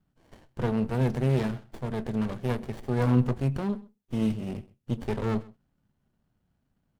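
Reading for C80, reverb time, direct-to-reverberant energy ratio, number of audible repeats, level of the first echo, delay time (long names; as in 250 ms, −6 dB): no reverb audible, no reverb audible, no reverb audible, 1, −22.0 dB, 129 ms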